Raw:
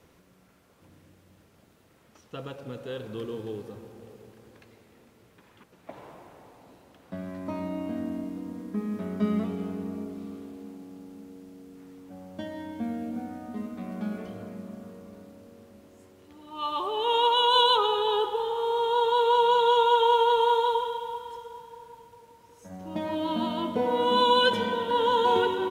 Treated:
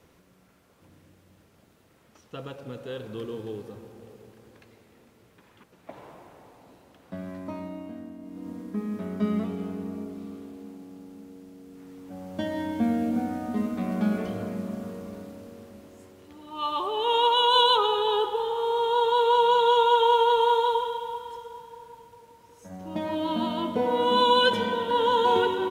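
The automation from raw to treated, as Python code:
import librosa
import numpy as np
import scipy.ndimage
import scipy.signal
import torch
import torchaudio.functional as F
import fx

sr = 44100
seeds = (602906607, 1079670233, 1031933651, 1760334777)

y = fx.gain(x, sr, db=fx.line((7.33, 0.0), (8.18, -10.0), (8.48, 0.0), (11.6, 0.0), (12.58, 7.5), (15.07, 7.5), (16.89, 1.0)))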